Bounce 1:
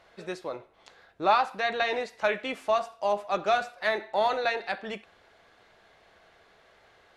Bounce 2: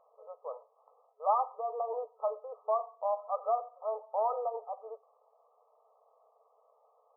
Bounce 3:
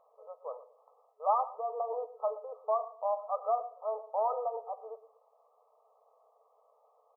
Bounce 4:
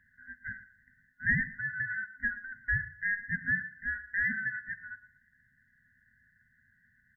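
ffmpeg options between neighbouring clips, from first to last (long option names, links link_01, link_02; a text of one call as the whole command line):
ffmpeg -i in.wav -af "afftfilt=real='re*between(b*sr/4096,420,1300)':imag='im*between(b*sr/4096,420,1300)':win_size=4096:overlap=0.75,volume=-5dB" out.wav
ffmpeg -i in.wav -filter_complex "[0:a]asplit=2[link_01][link_02];[link_02]adelay=117,lowpass=frequency=880:poles=1,volume=-14dB,asplit=2[link_03][link_04];[link_04]adelay=117,lowpass=frequency=880:poles=1,volume=0.33,asplit=2[link_05][link_06];[link_06]adelay=117,lowpass=frequency=880:poles=1,volume=0.33[link_07];[link_01][link_03][link_05][link_07]amix=inputs=4:normalize=0" out.wav
ffmpeg -i in.wav -af "afftfilt=real='real(if(lt(b,960),b+48*(1-2*mod(floor(b/48),2)),b),0)':imag='imag(if(lt(b,960),b+48*(1-2*mod(floor(b/48),2)),b),0)':win_size=2048:overlap=0.75" out.wav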